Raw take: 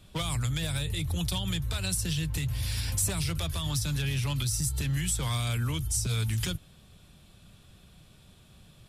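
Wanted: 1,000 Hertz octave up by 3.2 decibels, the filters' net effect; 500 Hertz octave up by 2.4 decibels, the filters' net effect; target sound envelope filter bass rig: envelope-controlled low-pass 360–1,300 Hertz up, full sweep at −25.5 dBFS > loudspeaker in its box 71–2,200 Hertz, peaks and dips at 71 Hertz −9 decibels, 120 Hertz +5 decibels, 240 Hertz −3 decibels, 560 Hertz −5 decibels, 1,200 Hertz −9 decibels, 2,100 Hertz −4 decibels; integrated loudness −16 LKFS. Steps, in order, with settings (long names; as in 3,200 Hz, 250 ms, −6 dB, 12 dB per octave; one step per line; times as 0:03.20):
parametric band 500 Hz +4 dB
parametric band 1,000 Hz +7.5 dB
envelope-controlled low-pass 360–1,300 Hz up, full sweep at −25.5 dBFS
loudspeaker in its box 71–2,200 Hz, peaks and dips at 71 Hz −9 dB, 120 Hz +5 dB, 240 Hz −3 dB, 560 Hz −5 dB, 1,200 Hz −9 dB, 2,100 Hz −4 dB
level +14 dB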